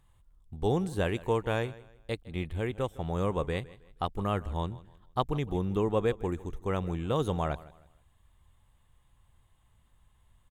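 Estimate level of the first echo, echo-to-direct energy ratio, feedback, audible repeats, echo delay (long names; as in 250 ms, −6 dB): −19.5 dB, −19.0 dB, 33%, 2, 158 ms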